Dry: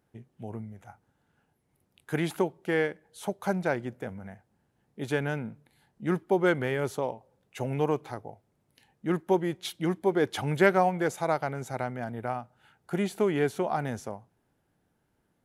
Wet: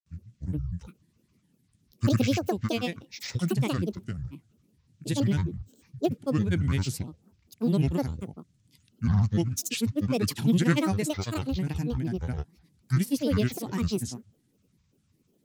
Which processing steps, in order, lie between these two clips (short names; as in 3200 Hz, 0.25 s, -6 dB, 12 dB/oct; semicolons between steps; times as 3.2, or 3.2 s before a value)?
graphic EQ 125/250/500/1000/4000/8000 Hz +11/+8/-11/-11/+7/+11 dB; grains, grains 20/s, pitch spread up and down by 12 st